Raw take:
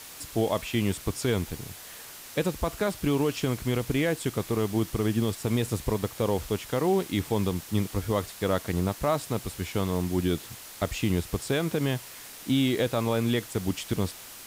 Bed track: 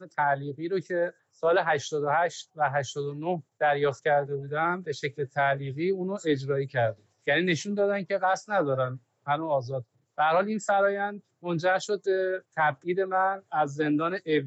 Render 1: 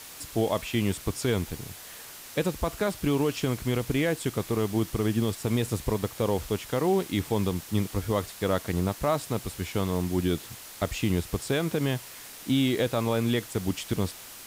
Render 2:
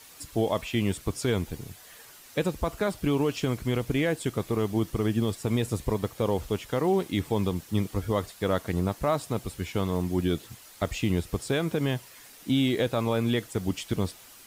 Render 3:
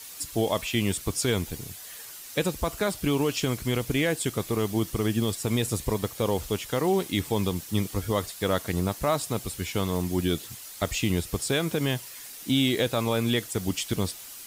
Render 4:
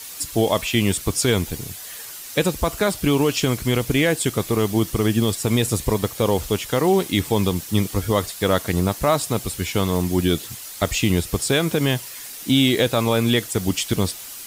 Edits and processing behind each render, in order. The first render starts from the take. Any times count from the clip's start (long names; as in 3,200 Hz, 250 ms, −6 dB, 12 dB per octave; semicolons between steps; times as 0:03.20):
no processing that can be heard
broadband denoise 8 dB, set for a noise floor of −45 dBFS
high-shelf EQ 2,900 Hz +9.5 dB
level +6.5 dB